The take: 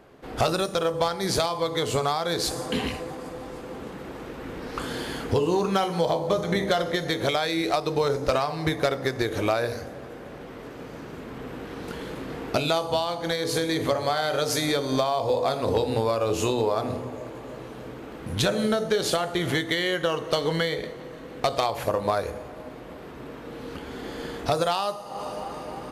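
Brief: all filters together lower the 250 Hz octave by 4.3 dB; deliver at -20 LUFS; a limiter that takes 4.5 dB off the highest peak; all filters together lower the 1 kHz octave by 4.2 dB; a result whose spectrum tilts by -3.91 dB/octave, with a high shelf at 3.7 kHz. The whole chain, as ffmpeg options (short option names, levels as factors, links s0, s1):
-af "equalizer=f=250:t=o:g=-6,equalizer=f=1000:t=o:g=-5,highshelf=f=3700:g=-8,volume=3.55,alimiter=limit=0.376:level=0:latency=1"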